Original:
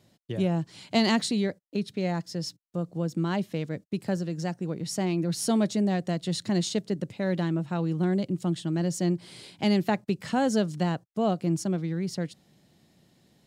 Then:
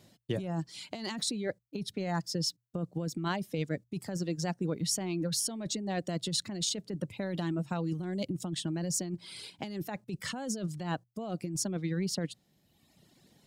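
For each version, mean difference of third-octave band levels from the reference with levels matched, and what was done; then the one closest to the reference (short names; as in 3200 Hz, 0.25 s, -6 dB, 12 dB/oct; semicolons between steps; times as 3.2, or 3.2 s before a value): 4.5 dB: reverb removal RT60 1.2 s; high shelf 4100 Hz +3 dB; notches 60/120 Hz; negative-ratio compressor -32 dBFS, ratio -1; gain -1.5 dB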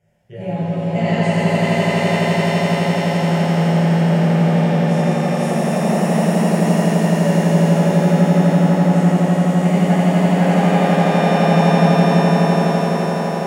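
12.0 dB: LPF 3500 Hz 6 dB/oct; fixed phaser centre 1100 Hz, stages 6; swelling echo 84 ms, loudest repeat 8, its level -4.5 dB; shimmer reverb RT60 3.4 s, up +7 st, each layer -8 dB, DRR -11 dB; gain -3.5 dB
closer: first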